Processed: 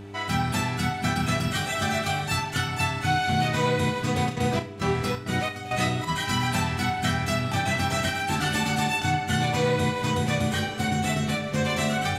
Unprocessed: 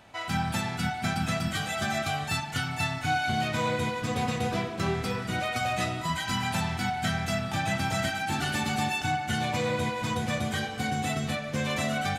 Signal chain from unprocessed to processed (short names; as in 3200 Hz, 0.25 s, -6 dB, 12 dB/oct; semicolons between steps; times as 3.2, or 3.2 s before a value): 4.28–6.07 step gate "x..xxx.x" 134 bpm -12 dB; buzz 100 Hz, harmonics 4, -44 dBFS -3 dB/oct; flutter echo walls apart 5.6 m, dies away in 0.25 s; gain +3 dB